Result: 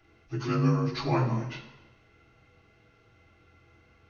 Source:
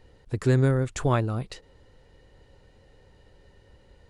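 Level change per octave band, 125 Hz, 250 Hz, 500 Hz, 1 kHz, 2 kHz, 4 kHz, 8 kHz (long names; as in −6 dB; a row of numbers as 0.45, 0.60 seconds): −4.0 dB, −0.5 dB, −6.0 dB, −0.5 dB, −3.5 dB, +1.5 dB, below −10 dB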